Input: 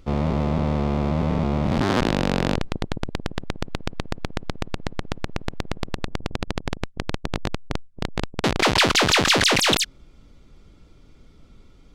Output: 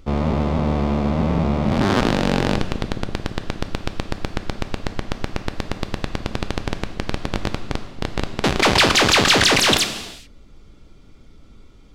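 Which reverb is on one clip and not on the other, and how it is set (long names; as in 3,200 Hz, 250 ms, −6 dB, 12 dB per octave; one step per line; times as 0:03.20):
reverb whose tail is shaped and stops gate 450 ms falling, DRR 7.5 dB
level +2.5 dB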